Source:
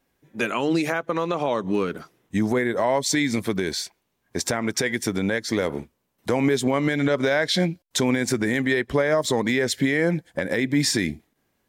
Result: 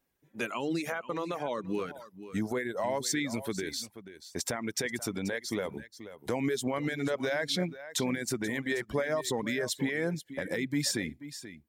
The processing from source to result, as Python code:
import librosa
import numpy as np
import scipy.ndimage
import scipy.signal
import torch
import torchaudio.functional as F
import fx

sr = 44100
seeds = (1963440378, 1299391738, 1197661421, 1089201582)

p1 = fx.high_shelf(x, sr, hz=9500.0, db=7.5)
p2 = p1 + fx.echo_single(p1, sr, ms=483, db=-13.0, dry=0)
p3 = fx.dereverb_blind(p2, sr, rt60_s=0.59)
y = p3 * librosa.db_to_amplitude(-9.0)